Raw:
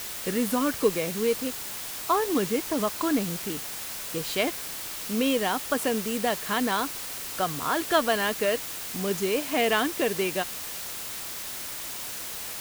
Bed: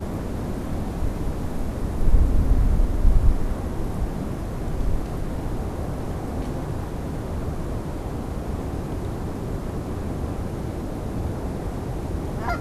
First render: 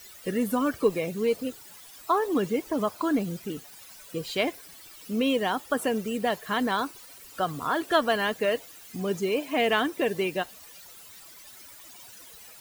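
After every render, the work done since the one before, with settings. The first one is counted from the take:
broadband denoise 16 dB, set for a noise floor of −36 dBFS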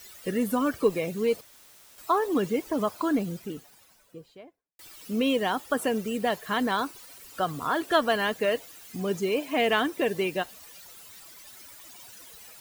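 0:01.41–0:01.98: fill with room tone
0:02.99–0:04.79: fade out and dull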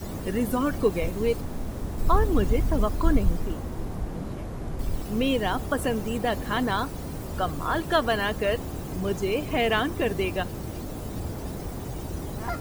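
mix in bed −5.5 dB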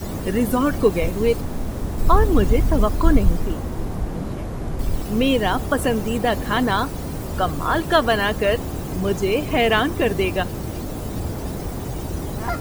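level +6 dB
brickwall limiter −2 dBFS, peak gain reduction 0.5 dB

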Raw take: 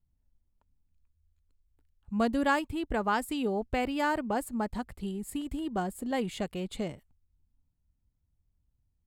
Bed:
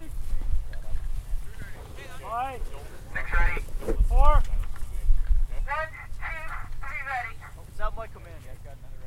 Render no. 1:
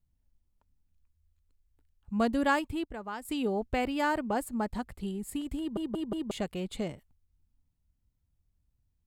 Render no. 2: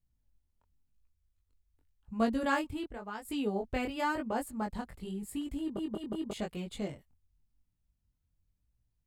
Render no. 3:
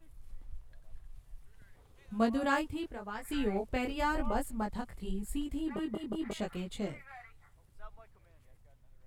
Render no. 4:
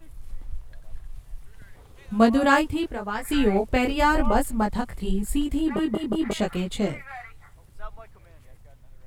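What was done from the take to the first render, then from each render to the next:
0:02.84–0:03.25: clip gain −10.5 dB; 0:05.59: stutter in place 0.18 s, 4 plays
chorus effect 0.91 Hz, delay 17.5 ms, depth 5.9 ms
mix in bed −20 dB
level +11.5 dB

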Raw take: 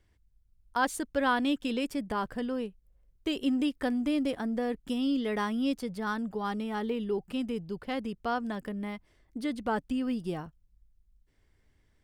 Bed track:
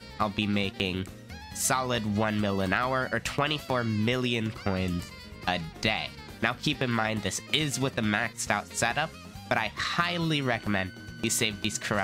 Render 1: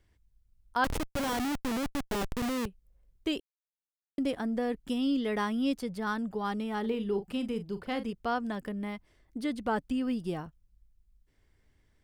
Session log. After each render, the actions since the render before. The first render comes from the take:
0:00.84–0:02.66: comparator with hysteresis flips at −32 dBFS
0:03.40–0:04.18: silence
0:06.80–0:08.13: double-tracking delay 40 ms −10.5 dB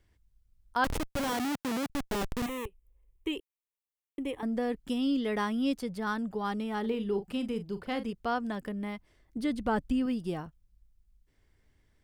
0:01.31–0:01.90: high-pass filter 130 Hz
0:02.46–0:04.43: phaser with its sweep stopped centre 980 Hz, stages 8
0:09.37–0:10.06: low-shelf EQ 140 Hz +10 dB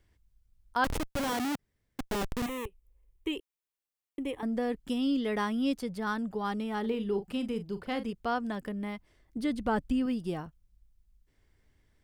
0:01.59–0:01.99: fill with room tone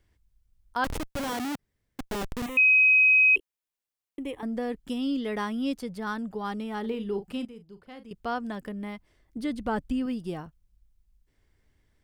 0:02.57–0:03.36: beep over 2,530 Hz −15.5 dBFS
0:07.45–0:08.11: clip gain −12 dB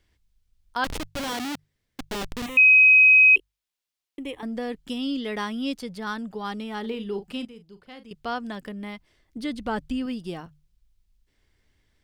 parametric band 3,800 Hz +6.5 dB 1.9 octaves
mains-hum notches 50/100/150 Hz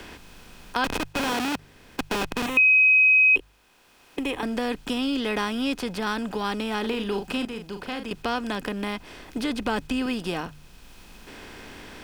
compressor on every frequency bin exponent 0.6
multiband upward and downward compressor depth 40%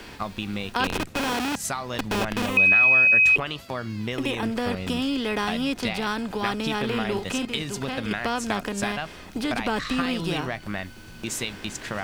mix in bed track −3.5 dB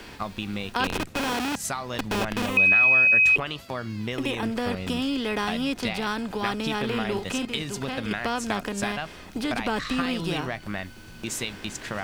level −1 dB

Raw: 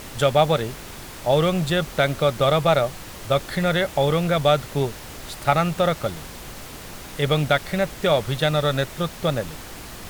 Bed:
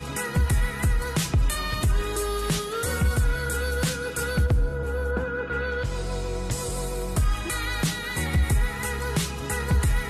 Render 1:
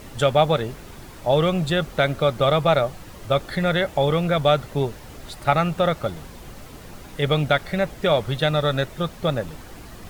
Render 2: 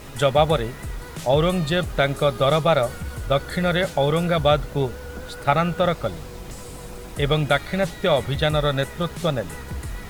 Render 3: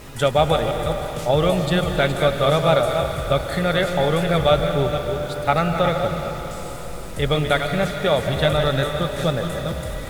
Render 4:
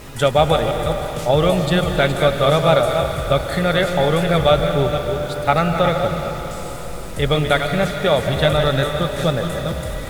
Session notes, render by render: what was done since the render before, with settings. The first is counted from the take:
broadband denoise 8 dB, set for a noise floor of −38 dBFS
mix in bed −10 dB
delay that plays each chunk backwards 237 ms, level −7.5 dB; comb and all-pass reverb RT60 4 s, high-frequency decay 1×, pre-delay 110 ms, DRR 6 dB
level +2.5 dB; brickwall limiter −2 dBFS, peak gain reduction 1 dB

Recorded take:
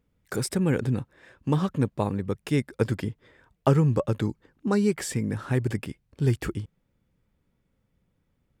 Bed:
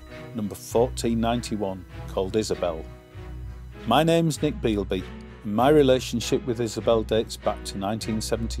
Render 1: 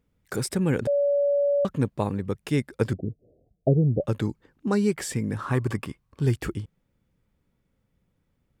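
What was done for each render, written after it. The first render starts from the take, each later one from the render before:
0:00.87–0:01.65: beep over 570 Hz −19 dBFS
0:02.93–0:04.04: Chebyshev low-pass filter 740 Hz, order 8
0:05.39–0:06.22: parametric band 1,100 Hz +14.5 dB 0.41 octaves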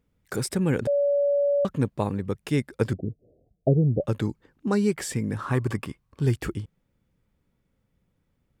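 no processing that can be heard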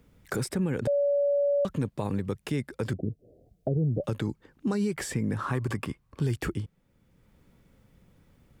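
brickwall limiter −20.5 dBFS, peak gain reduction 10 dB
multiband upward and downward compressor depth 40%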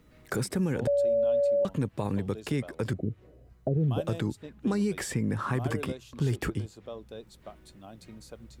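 mix in bed −20.5 dB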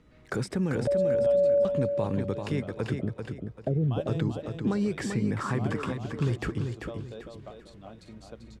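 high-frequency loss of the air 64 metres
on a send: repeating echo 391 ms, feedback 32%, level −6 dB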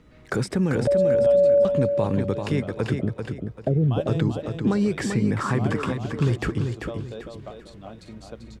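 level +5.5 dB

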